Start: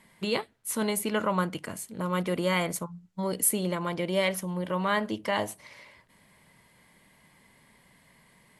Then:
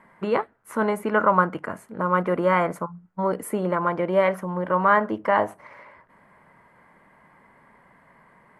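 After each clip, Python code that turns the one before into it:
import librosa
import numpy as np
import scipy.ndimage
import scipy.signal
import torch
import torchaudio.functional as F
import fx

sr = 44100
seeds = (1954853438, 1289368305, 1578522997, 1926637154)

y = fx.curve_eq(x, sr, hz=(110.0, 1400.0, 3700.0), db=(0, 12, -14))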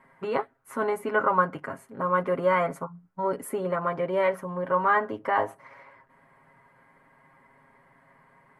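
y = x + 0.74 * np.pad(x, (int(7.4 * sr / 1000.0), 0))[:len(x)]
y = y * 10.0 ** (-5.5 / 20.0)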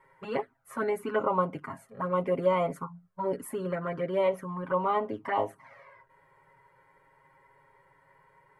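y = fx.env_flanger(x, sr, rest_ms=2.2, full_db=-21.0)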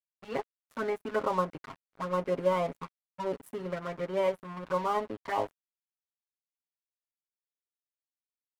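y = np.sign(x) * np.maximum(np.abs(x) - 10.0 ** (-41.0 / 20.0), 0.0)
y = y * 10.0 ** (-1.0 / 20.0)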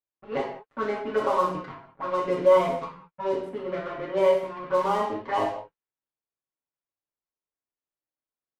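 y = fx.rev_gated(x, sr, seeds[0], gate_ms=240, shape='falling', drr_db=-3.5)
y = fx.env_lowpass(y, sr, base_hz=1400.0, full_db=-19.5)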